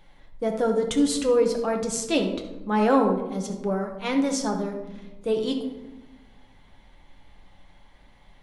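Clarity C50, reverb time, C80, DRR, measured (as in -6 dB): 7.0 dB, 1.1 s, 9.5 dB, 2.0 dB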